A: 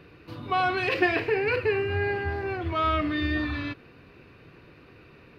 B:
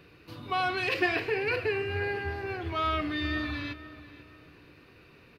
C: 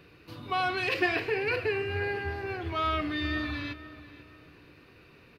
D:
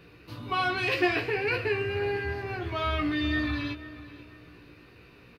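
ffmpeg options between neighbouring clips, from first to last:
-filter_complex "[0:a]highshelf=f=3.4k:g=9.5,asplit=2[a][b];[b]adelay=490,lowpass=f=3.2k:p=1,volume=-15.5dB,asplit=2[c][d];[d]adelay=490,lowpass=f=3.2k:p=1,volume=0.35,asplit=2[e][f];[f]adelay=490,lowpass=f=3.2k:p=1,volume=0.35[g];[a][c][e][g]amix=inputs=4:normalize=0,volume=-5dB"
-af anull
-filter_complex "[0:a]lowshelf=f=170:g=3.5,asplit=2[a][b];[b]adelay=17,volume=-3.5dB[c];[a][c]amix=inputs=2:normalize=0"

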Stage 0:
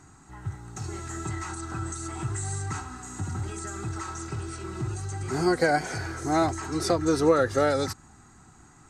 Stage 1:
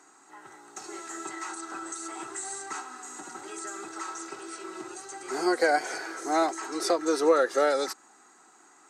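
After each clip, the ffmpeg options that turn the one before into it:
-af "highpass=f=340:w=0.5412,highpass=f=340:w=1.3066"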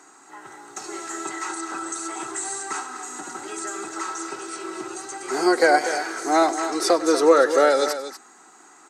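-af "aecho=1:1:100|241:0.119|0.282,volume=6.5dB"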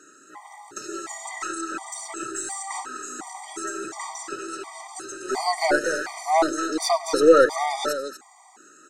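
-af "aeval=exprs='0.668*(cos(1*acos(clip(val(0)/0.668,-1,1)))-cos(1*PI/2))+0.015*(cos(8*acos(clip(val(0)/0.668,-1,1)))-cos(8*PI/2))':c=same,afftfilt=real='re*gt(sin(2*PI*1.4*pts/sr)*(1-2*mod(floor(b*sr/1024/620),2)),0)':imag='im*gt(sin(2*PI*1.4*pts/sr)*(1-2*mod(floor(b*sr/1024/620),2)),0)':win_size=1024:overlap=0.75,volume=1.5dB"

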